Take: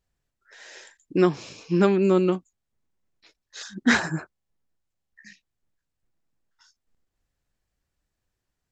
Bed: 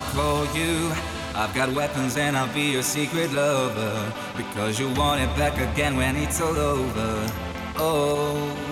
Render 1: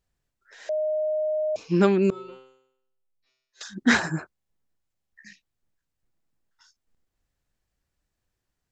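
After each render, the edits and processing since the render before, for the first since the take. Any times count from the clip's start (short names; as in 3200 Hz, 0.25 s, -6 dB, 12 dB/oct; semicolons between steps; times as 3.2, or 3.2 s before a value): 0.69–1.56 bleep 617 Hz -22.5 dBFS; 2.1–3.61 resonator 130 Hz, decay 0.76 s, mix 100%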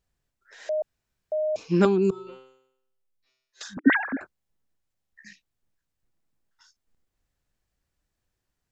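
0.82–1.32 room tone; 1.85–2.27 fixed phaser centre 380 Hz, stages 8; 3.77–4.21 sine-wave speech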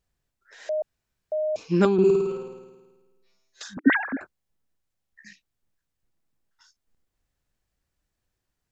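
1.93–3.64 flutter echo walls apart 9.2 m, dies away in 1.3 s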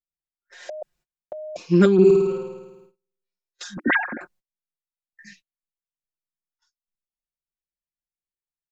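gate -55 dBFS, range -28 dB; comb 5.6 ms, depth 96%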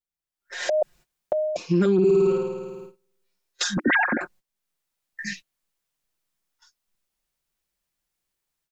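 AGC gain up to 14 dB; limiter -12.5 dBFS, peak gain reduction 11.5 dB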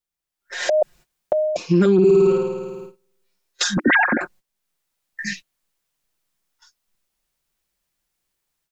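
gain +4.5 dB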